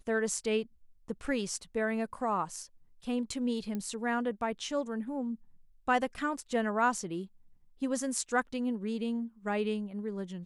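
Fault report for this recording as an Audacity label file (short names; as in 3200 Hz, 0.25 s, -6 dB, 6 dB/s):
3.750000	3.750000	pop -24 dBFS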